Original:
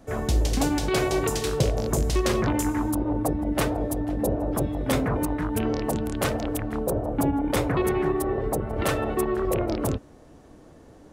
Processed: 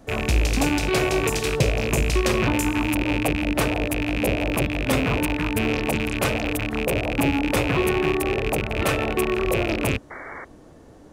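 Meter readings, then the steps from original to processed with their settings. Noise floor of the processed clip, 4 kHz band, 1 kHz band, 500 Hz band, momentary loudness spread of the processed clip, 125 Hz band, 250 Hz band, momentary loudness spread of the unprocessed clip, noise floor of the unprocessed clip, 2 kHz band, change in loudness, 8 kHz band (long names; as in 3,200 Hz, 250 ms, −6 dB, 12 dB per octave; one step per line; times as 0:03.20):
−47 dBFS, +6.5 dB, +2.0 dB, +2.0 dB, 4 LU, +2.0 dB, +2.0 dB, 4 LU, −50 dBFS, +9.5 dB, +3.0 dB, +2.0 dB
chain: loose part that buzzes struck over −30 dBFS, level −17 dBFS
sound drawn into the spectrogram noise, 0:10.10–0:10.45, 250–2,300 Hz −39 dBFS
level +2 dB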